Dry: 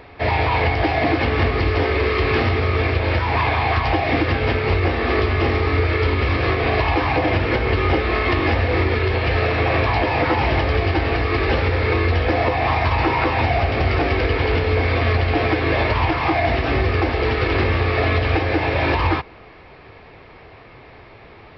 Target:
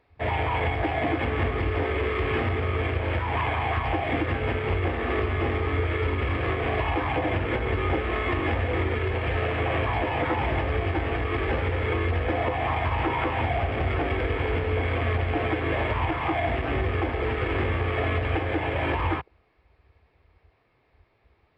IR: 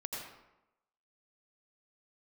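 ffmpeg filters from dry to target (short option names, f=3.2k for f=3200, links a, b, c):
-af "afwtdn=0.0398,volume=-7dB"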